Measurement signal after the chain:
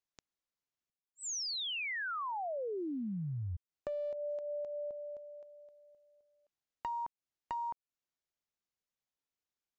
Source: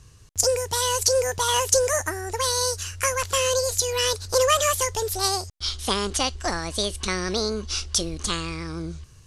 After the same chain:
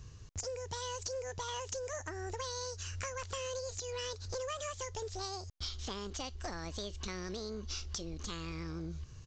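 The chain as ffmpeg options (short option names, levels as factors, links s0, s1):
-af "lowshelf=f=490:g=4.5,acompressor=threshold=0.0251:ratio=10,aresample=16000,aeval=exprs='clip(val(0),-1,0.0316)':c=same,aresample=44100,volume=0.596"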